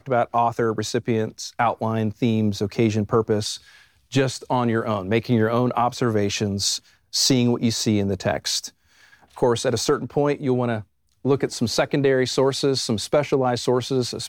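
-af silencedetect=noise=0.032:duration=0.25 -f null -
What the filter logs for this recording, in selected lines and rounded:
silence_start: 3.56
silence_end: 4.13 | silence_duration: 0.57
silence_start: 6.77
silence_end: 7.14 | silence_duration: 0.36
silence_start: 8.68
silence_end: 9.38 | silence_duration: 0.70
silence_start: 10.81
silence_end: 11.25 | silence_duration: 0.44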